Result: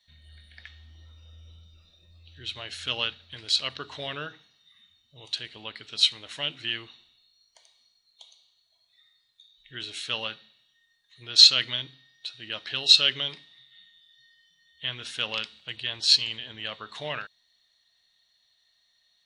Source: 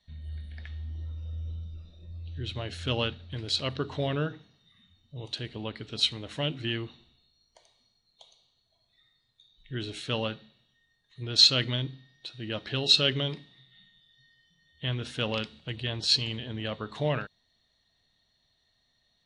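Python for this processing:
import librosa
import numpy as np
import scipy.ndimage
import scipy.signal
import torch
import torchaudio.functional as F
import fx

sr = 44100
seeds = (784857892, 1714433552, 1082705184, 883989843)

y = fx.tilt_shelf(x, sr, db=-10.0, hz=710.0)
y = F.gain(torch.from_numpy(y), -4.5).numpy()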